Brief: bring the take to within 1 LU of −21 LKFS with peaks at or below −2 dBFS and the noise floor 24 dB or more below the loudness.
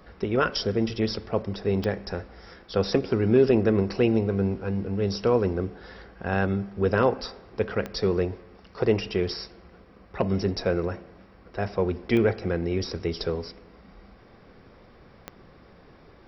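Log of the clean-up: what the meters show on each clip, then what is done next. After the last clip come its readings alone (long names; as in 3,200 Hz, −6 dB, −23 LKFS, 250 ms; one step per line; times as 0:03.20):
number of clicks 4; integrated loudness −26.0 LKFS; sample peak −8.5 dBFS; target loudness −21.0 LKFS
→ click removal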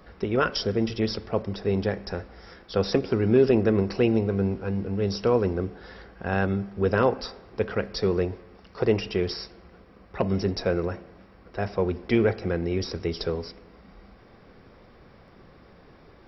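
number of clicks 0; integrated loudness −26.0 LKFS; sample peak −8.5 dBFS; target loudness −21.0 LKFS
→ level +5 dB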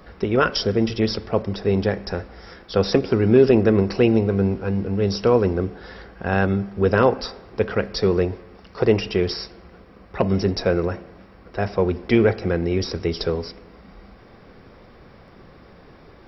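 integrated loudness −21.0 LKFS; sample peak −3.5 dBFS; background noise floor −48 dBFS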